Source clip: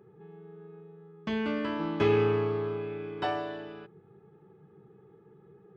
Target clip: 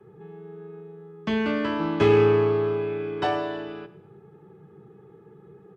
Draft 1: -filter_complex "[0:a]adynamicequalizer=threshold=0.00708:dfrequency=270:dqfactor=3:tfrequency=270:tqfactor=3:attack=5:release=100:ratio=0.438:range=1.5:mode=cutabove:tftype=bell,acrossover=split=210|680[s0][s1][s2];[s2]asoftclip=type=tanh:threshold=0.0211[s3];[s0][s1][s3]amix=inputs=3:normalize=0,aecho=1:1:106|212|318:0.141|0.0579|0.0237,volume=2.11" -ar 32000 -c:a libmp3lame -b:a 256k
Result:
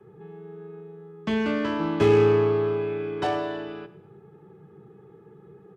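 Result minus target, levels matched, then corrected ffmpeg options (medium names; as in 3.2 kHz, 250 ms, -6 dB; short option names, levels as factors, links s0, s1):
saturation: distortion +8 dB
-filter_complex "[0:a]adynamicequalizer=threshold=0.00708:dfrequency=270:dqfactor=3:tfrequency=270:tqfactor=3:attack=5:release=100:ratio=0.438:range=1.5:mode=cutabove:tftype=bell,acrossover=split=210|680[s0][s1][s2];[s2]asoftclip=type=tanh:threshold=0.0447[s3];[s0][s1][s3]amix=inputs=3:normalize=0,aecho=1:1:106|212|318:0.141|0.0579|0.0237,volume=2.11" -ar 32000 -c:a libmp3lame -b:a 256k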